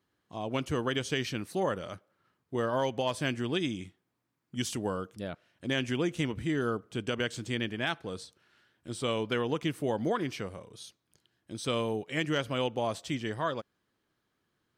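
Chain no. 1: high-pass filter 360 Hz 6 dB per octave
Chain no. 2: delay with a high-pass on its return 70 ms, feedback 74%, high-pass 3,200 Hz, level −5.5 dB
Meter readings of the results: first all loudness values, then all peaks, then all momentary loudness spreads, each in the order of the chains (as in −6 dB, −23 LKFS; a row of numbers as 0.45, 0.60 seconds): −35.0, −32.5 LKFS; −16.0, −17.5 dBFS; 13, 14 LU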